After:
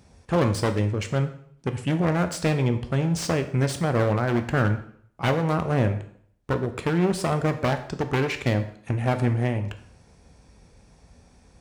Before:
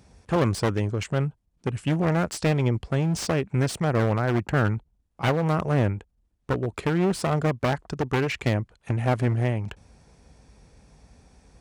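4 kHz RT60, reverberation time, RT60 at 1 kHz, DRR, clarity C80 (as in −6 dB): 0.55 s, 0.60 s, 0.60 s, 7.5 dB, 14.5 dB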